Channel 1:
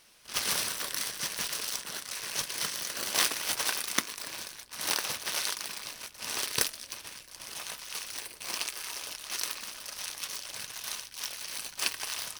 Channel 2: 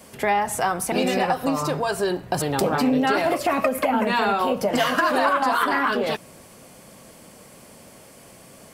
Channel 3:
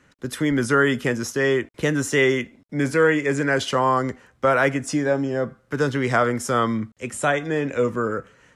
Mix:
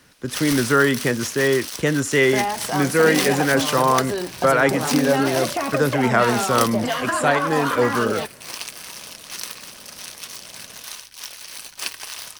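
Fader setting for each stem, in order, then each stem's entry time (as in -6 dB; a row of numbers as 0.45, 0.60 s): +2.0, -3.0, +1.5 dB; 0.00, 2.10, 0.00 s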